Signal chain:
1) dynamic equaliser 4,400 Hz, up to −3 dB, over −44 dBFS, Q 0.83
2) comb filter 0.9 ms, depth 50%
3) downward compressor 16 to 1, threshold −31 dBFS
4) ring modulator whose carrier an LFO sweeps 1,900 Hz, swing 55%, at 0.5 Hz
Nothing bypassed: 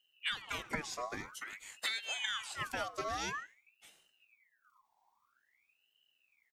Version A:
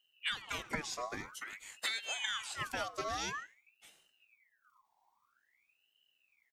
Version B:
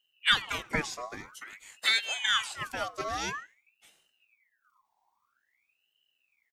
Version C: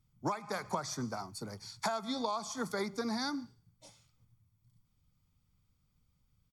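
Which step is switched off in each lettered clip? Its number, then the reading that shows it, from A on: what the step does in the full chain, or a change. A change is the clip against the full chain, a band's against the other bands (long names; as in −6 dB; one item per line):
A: 1, 8 kHz band +2.0 dB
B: 3, average gain reduction 4.5 dB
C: 4, change in crest factor −2.5 dB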